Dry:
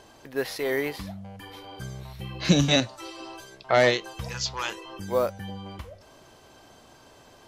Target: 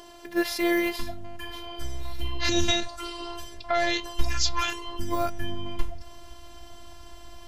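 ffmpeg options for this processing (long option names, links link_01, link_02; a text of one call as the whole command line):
ffmpeg -i in.wav -af "alimiter=limit=-17dB:level=0:latency=1:release=69,asubboost=boost=10.5:cutoff=110,afftfilt=real='hypot(re,im)*cos(PI*b)':imag='0':win_size=512:overlap=0.75,volume=8dB" out.wav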